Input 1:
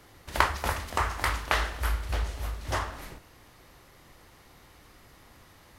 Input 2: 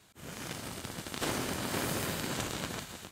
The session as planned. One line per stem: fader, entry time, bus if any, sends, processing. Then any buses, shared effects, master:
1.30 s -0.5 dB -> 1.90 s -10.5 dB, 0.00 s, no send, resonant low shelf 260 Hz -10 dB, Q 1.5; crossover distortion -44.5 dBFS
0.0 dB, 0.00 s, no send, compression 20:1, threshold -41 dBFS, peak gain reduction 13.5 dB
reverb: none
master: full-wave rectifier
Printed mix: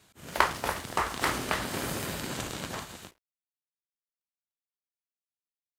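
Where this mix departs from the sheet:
stem 2: missing compression 20:1, threshold -41 dBFS, peak gain reduction 13.5 dB; master: missing full-wave rectifier

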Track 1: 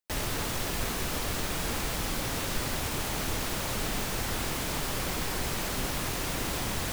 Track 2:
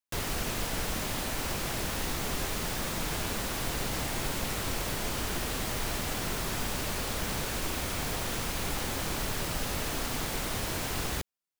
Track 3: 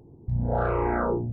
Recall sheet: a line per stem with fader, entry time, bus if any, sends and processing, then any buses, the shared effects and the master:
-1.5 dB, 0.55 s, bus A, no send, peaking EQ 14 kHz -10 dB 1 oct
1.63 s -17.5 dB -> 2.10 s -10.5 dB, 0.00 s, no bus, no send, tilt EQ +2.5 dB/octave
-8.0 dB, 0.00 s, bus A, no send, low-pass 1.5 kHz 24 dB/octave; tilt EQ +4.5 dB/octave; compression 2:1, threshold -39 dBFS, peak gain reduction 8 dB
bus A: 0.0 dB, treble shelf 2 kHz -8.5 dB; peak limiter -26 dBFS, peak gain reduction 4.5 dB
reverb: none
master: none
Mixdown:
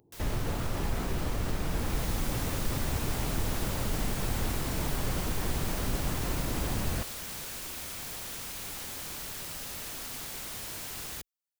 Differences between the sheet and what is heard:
stem 1: entry 0.55 s -> 0.10 s; stem 3: missing low-pass 1.5 kHz 24 dB/octave; master: extra bass shelf 210 Hz +7.5 dB

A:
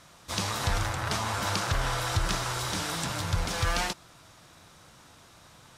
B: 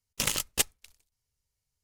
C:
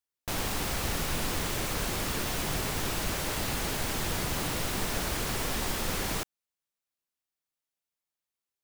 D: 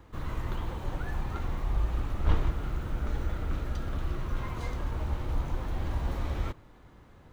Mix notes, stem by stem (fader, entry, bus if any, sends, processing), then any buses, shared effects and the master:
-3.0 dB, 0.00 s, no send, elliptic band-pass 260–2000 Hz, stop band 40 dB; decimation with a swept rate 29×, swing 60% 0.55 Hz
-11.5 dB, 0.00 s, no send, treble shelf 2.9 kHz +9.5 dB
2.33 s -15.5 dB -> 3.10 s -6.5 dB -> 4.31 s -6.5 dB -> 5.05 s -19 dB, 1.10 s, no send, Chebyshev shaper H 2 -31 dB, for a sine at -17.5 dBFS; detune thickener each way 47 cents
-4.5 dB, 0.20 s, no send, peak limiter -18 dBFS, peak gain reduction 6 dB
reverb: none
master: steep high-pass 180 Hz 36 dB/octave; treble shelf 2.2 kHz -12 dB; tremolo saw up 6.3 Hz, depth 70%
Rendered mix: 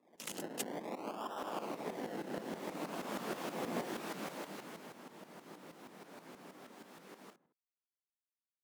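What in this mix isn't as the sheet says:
stem C -15.5 dB -> -8.5 dB; stem D -4.5 dB -> -14.0 dB

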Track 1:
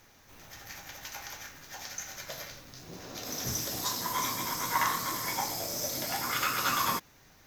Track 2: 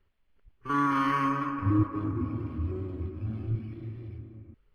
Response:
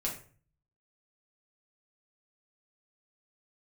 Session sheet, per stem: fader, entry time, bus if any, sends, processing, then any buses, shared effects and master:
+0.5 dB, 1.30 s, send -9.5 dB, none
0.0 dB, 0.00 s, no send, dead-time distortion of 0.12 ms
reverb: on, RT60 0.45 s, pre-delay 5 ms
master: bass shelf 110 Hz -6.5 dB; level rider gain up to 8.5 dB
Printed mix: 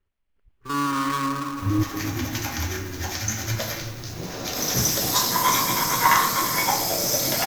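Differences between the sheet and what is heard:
stem 2 0.0 dB -> -6.5 dB; master: missing bass shelf 110 Hz -6.5 dB

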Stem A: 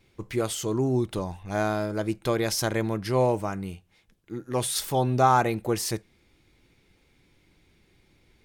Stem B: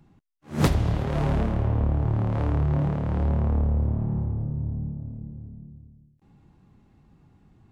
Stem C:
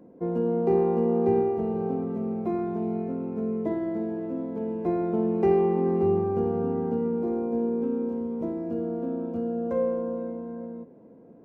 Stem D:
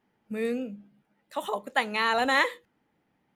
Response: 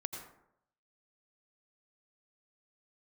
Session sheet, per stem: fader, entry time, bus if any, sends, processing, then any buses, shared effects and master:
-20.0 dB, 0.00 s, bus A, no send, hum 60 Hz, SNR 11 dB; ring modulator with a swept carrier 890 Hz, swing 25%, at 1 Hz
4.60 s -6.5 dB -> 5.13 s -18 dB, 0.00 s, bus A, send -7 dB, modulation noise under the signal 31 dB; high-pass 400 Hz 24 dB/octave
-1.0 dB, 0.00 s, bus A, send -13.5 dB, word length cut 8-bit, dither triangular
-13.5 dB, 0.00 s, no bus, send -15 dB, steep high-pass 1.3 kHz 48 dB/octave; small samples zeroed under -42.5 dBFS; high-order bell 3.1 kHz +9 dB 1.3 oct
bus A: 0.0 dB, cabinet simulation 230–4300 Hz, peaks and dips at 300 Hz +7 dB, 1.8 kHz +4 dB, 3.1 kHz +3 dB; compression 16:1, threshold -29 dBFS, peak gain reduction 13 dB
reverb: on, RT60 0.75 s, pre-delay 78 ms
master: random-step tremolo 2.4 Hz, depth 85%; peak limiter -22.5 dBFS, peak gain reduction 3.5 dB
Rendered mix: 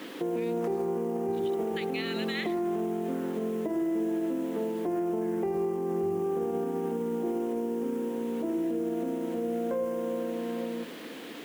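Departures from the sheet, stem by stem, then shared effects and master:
stem B -6.5 dB -> -14.5 dB; stem C -1.0 dB -> +6.0 dB; master: missing random-step tremolo 2.4 Hz, depth 85%

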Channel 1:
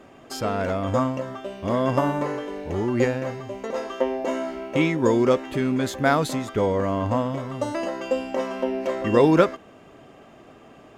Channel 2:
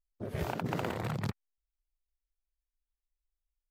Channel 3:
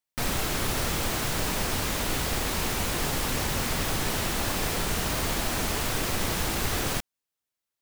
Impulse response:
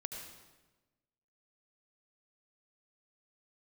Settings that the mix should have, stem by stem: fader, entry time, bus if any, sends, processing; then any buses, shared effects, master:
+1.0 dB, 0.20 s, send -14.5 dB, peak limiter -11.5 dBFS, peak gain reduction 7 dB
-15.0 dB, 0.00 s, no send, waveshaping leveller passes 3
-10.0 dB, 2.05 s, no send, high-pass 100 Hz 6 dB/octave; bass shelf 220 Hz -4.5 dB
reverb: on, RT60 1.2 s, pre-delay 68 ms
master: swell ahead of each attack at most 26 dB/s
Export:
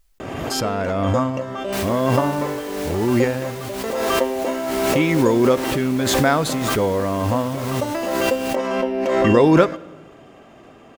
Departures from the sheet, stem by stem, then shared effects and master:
stem 1: missing peak limiter -11.5 dBFS, peak gain reduction 7 dB; stem 2: missing waveshaping leveller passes 3; stem 3: entry 2.05 s -> 1.55 s

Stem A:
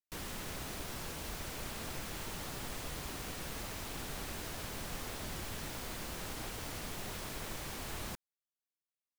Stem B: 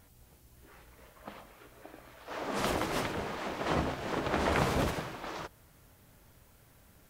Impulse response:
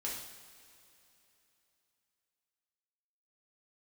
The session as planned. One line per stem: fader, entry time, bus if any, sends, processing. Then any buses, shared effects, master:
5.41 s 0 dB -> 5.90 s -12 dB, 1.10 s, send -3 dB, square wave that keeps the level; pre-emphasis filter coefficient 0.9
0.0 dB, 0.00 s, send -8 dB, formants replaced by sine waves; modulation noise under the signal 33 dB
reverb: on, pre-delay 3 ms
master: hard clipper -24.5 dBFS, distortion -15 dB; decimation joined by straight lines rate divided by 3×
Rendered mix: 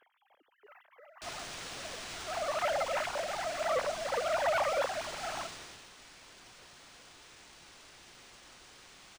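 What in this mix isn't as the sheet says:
stem A: missing square wave that keeps the level; stem B: send off

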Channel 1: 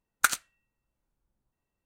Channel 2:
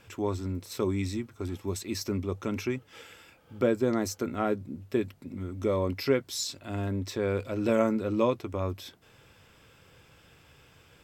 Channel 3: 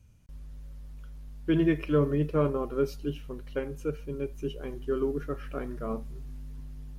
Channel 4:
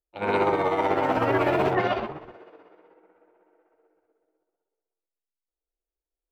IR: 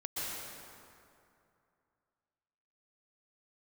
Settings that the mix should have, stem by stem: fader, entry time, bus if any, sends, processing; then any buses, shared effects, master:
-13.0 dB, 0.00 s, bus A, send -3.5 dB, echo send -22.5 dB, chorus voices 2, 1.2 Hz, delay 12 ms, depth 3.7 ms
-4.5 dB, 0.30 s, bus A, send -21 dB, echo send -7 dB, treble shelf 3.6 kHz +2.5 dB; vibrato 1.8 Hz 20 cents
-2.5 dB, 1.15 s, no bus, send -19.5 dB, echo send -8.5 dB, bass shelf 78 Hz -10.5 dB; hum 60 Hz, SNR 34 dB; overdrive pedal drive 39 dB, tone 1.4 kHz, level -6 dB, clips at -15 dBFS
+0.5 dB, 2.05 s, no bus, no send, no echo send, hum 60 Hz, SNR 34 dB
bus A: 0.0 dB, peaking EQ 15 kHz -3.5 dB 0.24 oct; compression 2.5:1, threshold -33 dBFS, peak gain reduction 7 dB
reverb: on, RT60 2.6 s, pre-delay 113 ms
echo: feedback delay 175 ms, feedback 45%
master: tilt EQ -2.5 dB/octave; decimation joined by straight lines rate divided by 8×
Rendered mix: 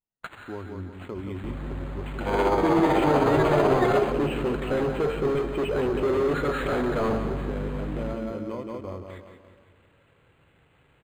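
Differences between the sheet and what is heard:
stem 3: missing bass shelf 78 Hz -10.5 dB; master: missing tilt EQ -2.5 dB/octave

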